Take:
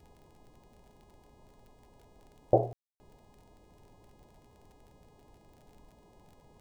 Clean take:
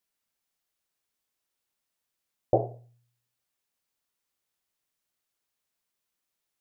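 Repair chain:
click removal
hum removal 415.9 Hz, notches 23
ambience match 0:02.73–0:03.00
noise reduction from a noise print 23 dB

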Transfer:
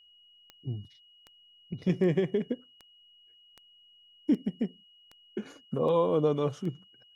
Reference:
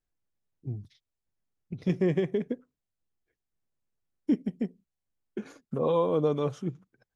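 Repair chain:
click removal
notch filter 2,900 Hz, Q 30

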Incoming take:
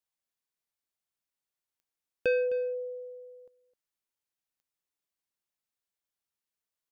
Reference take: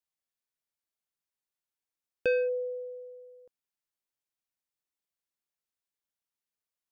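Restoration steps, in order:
click removal
echo removal 259 ms −16.5 dB

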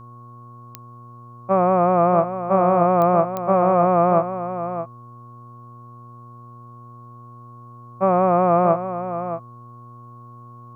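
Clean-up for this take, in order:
click removal
hum removal 119.6 Hz, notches 12
notch filter 1,100 Hz, Q 30
echo removal 626 ms −10 dB

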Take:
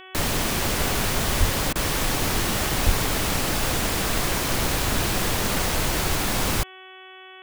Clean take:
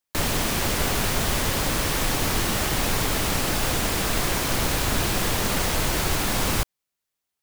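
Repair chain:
hum removal 375 Hz, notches 9
high-pass at the plosives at 0:01.39/0:02.85
repair the gap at 0:01.73, 24 ms

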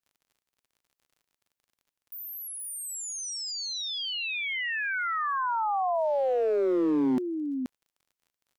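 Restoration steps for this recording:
clipped peaks rebuilt −21.5 dBFS
click removal
echo removal 478 ms −7.5 dB

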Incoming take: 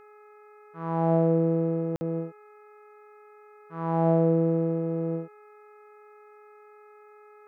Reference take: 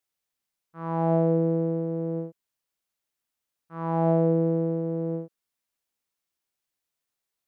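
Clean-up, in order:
hum removal 419.1 Hz, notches 6
notch filter 1,300 Hz, Q 30
repair the gap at 0:01.96, 50 ms

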